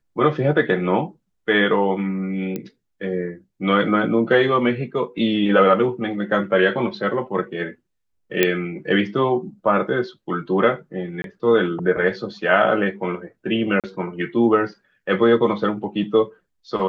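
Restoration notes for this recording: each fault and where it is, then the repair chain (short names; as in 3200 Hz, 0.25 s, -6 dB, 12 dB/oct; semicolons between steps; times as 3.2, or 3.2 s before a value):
2.56 pop -14 dBFS
8.43 pop -2 dBFS
11.22–11.24 gap 22 ms
13.8–13.84 gap 37 ms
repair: de-click; interpolate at 11.22, 22 ms; interpolate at 13.8, 37 ms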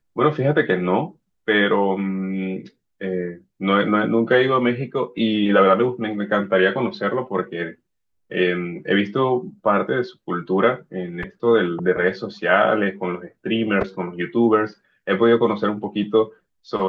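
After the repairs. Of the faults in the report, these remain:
none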